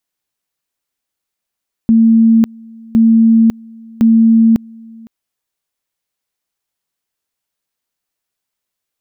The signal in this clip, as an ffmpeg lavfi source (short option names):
-f lavfi -i "aevalsrc='pow(10,(-5-27*gte(mod(t,1.06),0.55))/20)*sin(2*PI*226*t)':d=3.18:s=44100"